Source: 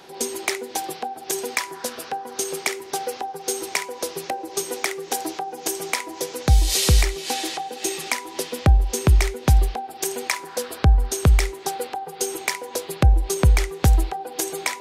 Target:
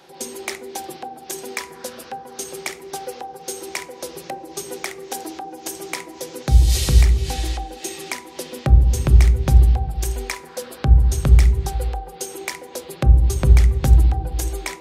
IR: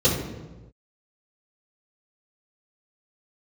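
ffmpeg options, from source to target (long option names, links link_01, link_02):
-filter_complex "[0:a]asplit=2[link_01][link_02];[1:a]atrim=start_sample=2205,lowpass=2100,lowshelf=frequency=73:gain=12[link_03];[link_02][link_03]afir=irnorm=-1:irlink=0,volume=-26dB[link_04];[link_01][link_04]amix=inputs=2:normalize=0,volume=-4dB"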